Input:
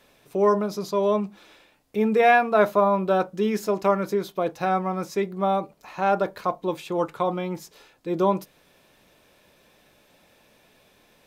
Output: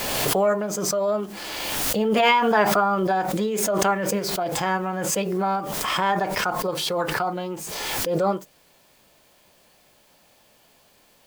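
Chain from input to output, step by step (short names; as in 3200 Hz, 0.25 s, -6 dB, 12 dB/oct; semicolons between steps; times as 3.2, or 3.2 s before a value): requantised 10-bit, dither triangular; formant shift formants +4 st; backwards sustainer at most 24 dB/s; gain -1.5 dB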